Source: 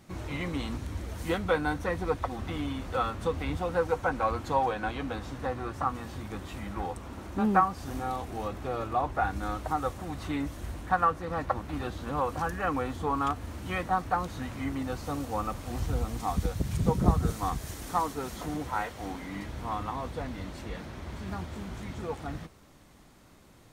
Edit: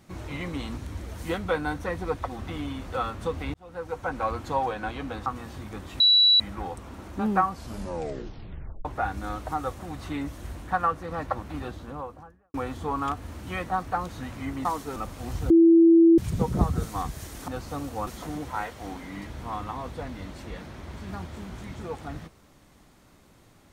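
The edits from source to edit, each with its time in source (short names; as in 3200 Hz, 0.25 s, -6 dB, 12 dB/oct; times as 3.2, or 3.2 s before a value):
3.54–4.22 fade in
5.26–5.85 cut
6.59 add tone 3930 Hz -14.5 dBFS 0.40 s
7.69 tape stop 1.35 s
11.66–12.73 studio fade out
14.84–15.43 swap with 17.95–18.26
15.97–16.65 bleep 332 Hz -12 dBFS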